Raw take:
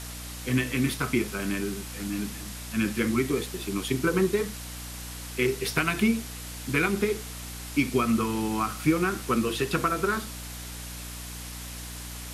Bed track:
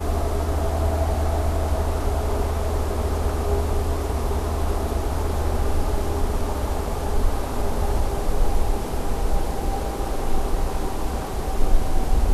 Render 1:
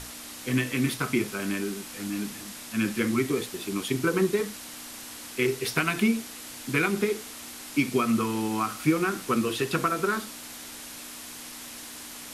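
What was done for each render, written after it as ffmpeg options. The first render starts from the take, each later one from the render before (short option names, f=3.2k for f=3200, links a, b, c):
-af "bandreject=f=60:t=h:w=6,bandreject=f=120:t=h:w=6,bandreject=f=180:t=h:w=6"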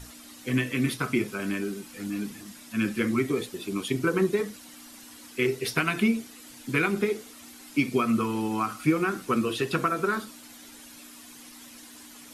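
-af "afftdn=nr=10:nf=-42"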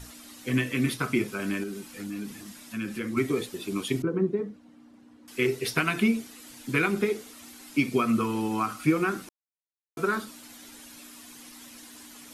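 -filter_complex "[0:a]asettb=1/sr,asplit=3[a][b][c];[a]atrim=end=1.634[d];[b]atrim=start=1.63:end=3.17,asetpts=PTS-STARTPTS,afade=t=in:d=0.004:c=qsin,afade=t=out:st=1.536:d=0.004:c=qsin,acompressor=threshold=-33dB:ratio=2:attack=3.2:release=140:knee=1:detection=peak[e];[c]atrim=start=3.166[f];[d][e]acrossfade=d=0.004:c1=hsin:c2=qsin[g];[g][f]acrossfade=d=0.004:c1=qsin:c2=hsin,asettb=1/sr,asplit=3[h][i][j];[h]atrim=end=4.024[k];[i]atrim=start=4.02:end=5.28,asetpts=PTS-STARTPTS,afade=t=in:d=0.004:c=qsin,afade=t=out:st=1.256:d=0.004:c=qsin,bandpass=f=200:t=q:w=0.6[l];[j]atrim=start=5.276[m];[k][l]acrossfade=d=0.004:c1=hsin:c2=qsin[n];[n][m]acrossfade=d=0.004:c1=qsin:c2=hsin,asplit=3[o][p][q];[o]atrim=end=9.29,asetpts=PTS-STARTPTS,afade=t=out:st=9.286:d=0.004:c=hsin[r];[p]atrim=start=9.29:end=9.97,asetpts=PTS-STARTPTS,volume=0[s];[q]atrim=start=9.97,asetpts=PTS-STARTPTS,afade=t=in:d=0.004:c=hsin[t];[r][s][t]concat=n=3:v=0:a=1"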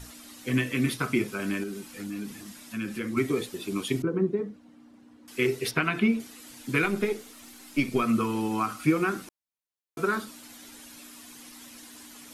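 -filter_complex "[0:a]asettb=1/sr,asplit=3[a][b][c];[a]atrim=end=5.714[d];[b]atrim=start=5.71:end=6.2,asetpts=PTS-STARTPTS,afade=t=in:d=0.004:c=qsin,afade=t=out:st=0.486:d=0.004:c=qsin,acrossover=split=3700[e][f];[f]acompressor=threshold=-56dB:ratio=4:attack=1:release=60[g];[e][g]amix=inputs=2:normalize=0[h];[c]atrim=start=6.196[i];[d][h]acrossfade=d=0.004:c1=hsin:c2=qsin[j];[j][i]acrossfade=d=0.004:c1=qsin:c2=hsin,asettb=1/sr,asplit=3[k][l][m];[k]atrim=end=6.844[n];[l]atrim=start=6.84:end=8.03,asetpts=PTS-STARTPTS,afade=t=in:d=0.004:c=qsin,afade=t=out:st=1.186:d=0.004:c=qsin,aeval=exprs='if(lt(val(0),0),0.708*val(0),val(0))':c=same[o];[m]atrim=start=8.026[p];[n][o]acrossfade=d=0.004:c1=hsin:c2=qsin[q];[q][p]acrossfade=d=0.004:c1=qsin:c2=hsin"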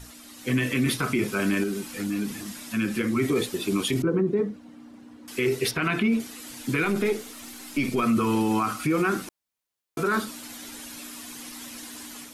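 -af "dynaudnorm=f=330:g=3:m=7dB,alimiter=limit=-15.5dB:level=0:latency=1:release=23"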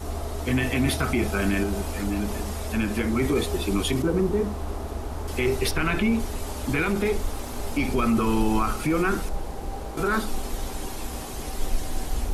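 -filter_complex "[1:a]volume=-8dB[a];[0:a][a]amix=inputs=2:normalize=0"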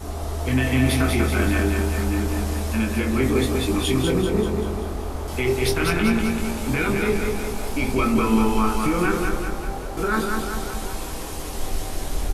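-filter_complex "[0:a]asplit=2[a][b];[b]adelay=23,volume=-5.5dB[c];[a][c]amix=inputs=2:normalize=0,aecho=1:1:194|388|582|776|970|1164|1358:0.631|0.347|0.191|0.105|0.0577|0.0318|0.0175"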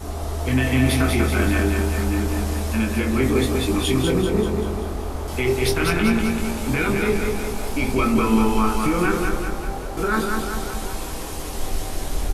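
-af "volume=1dB"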